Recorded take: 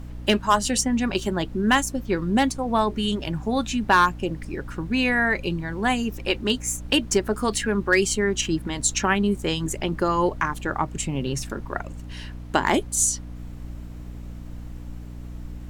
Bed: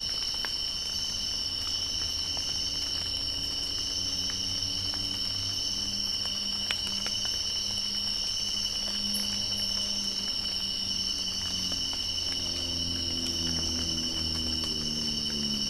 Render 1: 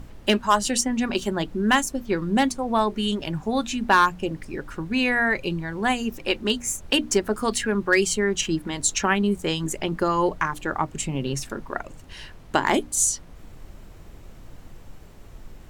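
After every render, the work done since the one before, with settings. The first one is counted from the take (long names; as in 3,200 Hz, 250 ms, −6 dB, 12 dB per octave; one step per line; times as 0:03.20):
mains-hum notches 60/120/180/240/300 Hz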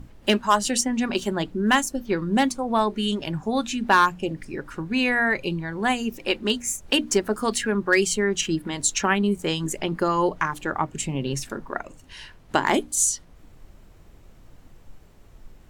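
noise reduction from a noise print 6 dB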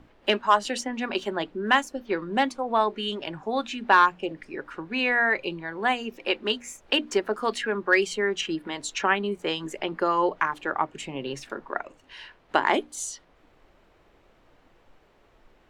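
three-way crossover with the lows and the highs turned down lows −15 dB, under 310 Hz, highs −16 dB, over 4,200 Hz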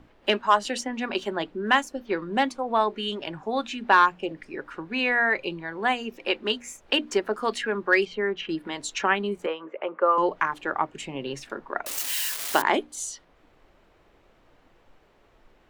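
0:08.05–0:08.49: high-frequency loss of the air 270 metres
0:09.46–0:10.18: loudspeaker in its box 460–2,300 Hz, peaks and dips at 530 Hz +9 dB, 760 Hz −4 dB, 1,200 Hz +6 dB, 1,800 Hz −8 dB
0:11.86–0:12.62: spike at every zero crossing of −18.5 dBFS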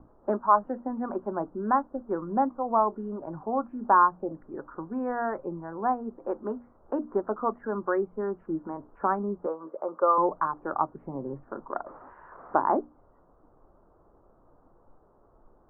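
Butterworth low-pass 1,300 Hz 48 dB per octave
dynamic equaliser 420 Hz, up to −4 dB, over −42 dBFS, Q 2.9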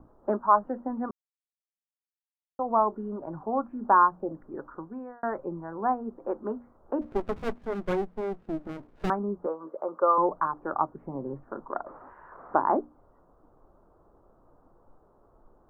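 0:01.11–0:02.59: silence
0:04.66–0:05.23: fade out
0:07.01–0:09.10: windowed peak hold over 33 samples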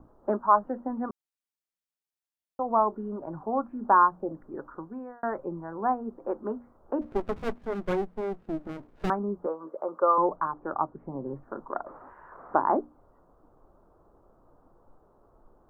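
0:10.36–0:11.26: high-frequency loss of the air 350 metres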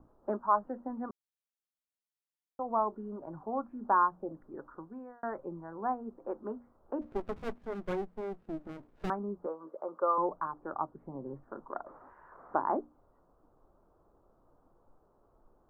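level −6.5 dB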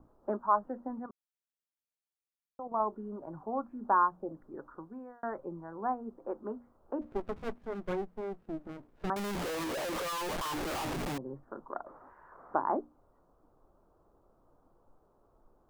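0:00.99–0:02.80: output level in coarse steps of 10 dB
0:09.16–0:11.18: sign of each sample alone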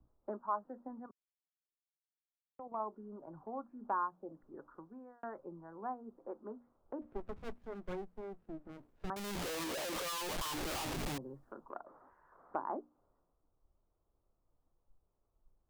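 downward compressor 2 to 1, threshold −46 dBFS, peak gain reduction 14 dB
multiband upward and downward expander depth 70%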